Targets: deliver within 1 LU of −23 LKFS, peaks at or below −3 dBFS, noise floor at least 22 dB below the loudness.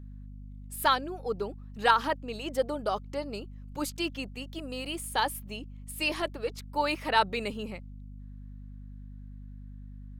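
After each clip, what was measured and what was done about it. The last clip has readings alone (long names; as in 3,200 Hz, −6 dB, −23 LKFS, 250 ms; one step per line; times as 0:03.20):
mains hum 50 Hz; hum harmonics up to 250 Hz; level of the hum −42 dBFS; integrated loudness −31.0 LKFS; sample peak −10.0 dBFS; target loudness −23.0 LKFS
→ hum removal 50 Hz, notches 5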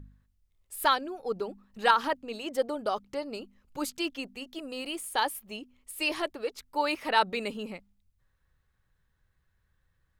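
mains hum none found; integrated loudness −31.0 LKFS; sample peak −9.5 dBFS; target loudness −23.0 LKFS
→ level +8 dB
brickwall limiter −3 dBFS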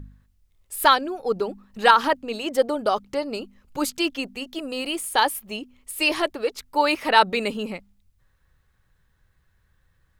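integrated loudness −23.0 LKFS; sample peak −3.0 dBFS; background noise floor −66 dBFS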